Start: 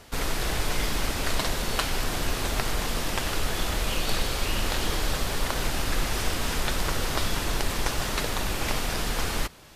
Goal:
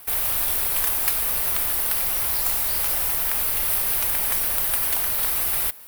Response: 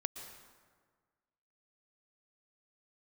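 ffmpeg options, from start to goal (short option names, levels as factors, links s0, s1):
-af "bass=f=250:g=-11,treble=f=4000:g=-3,asetrate=73206,aresample=44100,aexciter=amount=11:drive=4.1:freq=9600,volume=0.841"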